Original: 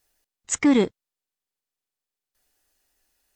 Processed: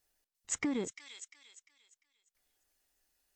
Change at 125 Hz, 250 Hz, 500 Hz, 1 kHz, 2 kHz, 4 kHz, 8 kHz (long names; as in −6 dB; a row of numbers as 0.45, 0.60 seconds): −15.5, −16.0, −16.0, −15.5, −11.0, −11.5, −8.5 decibels